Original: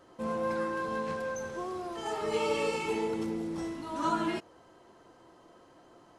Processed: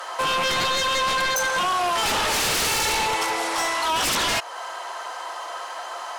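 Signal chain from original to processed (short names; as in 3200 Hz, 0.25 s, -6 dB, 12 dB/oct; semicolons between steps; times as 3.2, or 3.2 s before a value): HPF 750 Hz 24 dB/oct; in parallel at +3 dB: compressor, threshold -50 dBFS, peak gain reduction 21 dB; on the sum: sine folder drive 18 dB, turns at -19.5 dBFS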